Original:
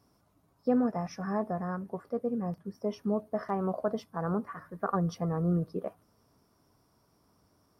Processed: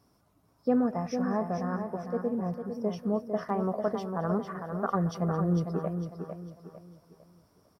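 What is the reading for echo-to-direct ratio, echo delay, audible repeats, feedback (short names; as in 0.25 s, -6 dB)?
-6.0 dB, 0.218 s, 6, no steady repeat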